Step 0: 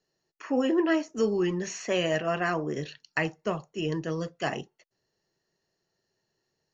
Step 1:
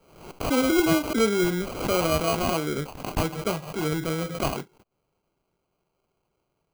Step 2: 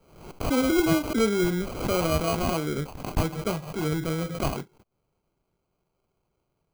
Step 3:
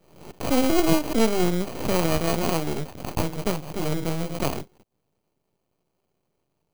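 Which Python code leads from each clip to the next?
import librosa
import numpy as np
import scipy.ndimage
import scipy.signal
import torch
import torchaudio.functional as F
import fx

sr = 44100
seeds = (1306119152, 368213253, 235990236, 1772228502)

y1 = fx.sample_hold(x, sr, seeds[0], rate_hz=1800.0, jitter_pct=0)
y1 = fx.pre_swell(y1, sr, db_per_s=79.0)
y1 = y1 * librosa.db_to_amplitude(3.0)
y2 = fx.low_shelf(y1, sr, hz=190.0, db=6.5)
y2 = fx.notch(y2, sr, hz=2800.0, q=19.0)
y2 = y2 * librosa.db_to_amplitude(-2.5)
y3 = scipy.signal.sosfilt(scipy.signal.butter(2, 100.0, 'highpass', fs=sr, output='sos'), y2)
y3 = fx.peak_eq(y3, sr, hz=1400.0, db=-8.0, octaves=0.91)
y3 = np.maximum(y3, 0.0)
y3 = y3 * librosa.db_to_amplitude(6.5)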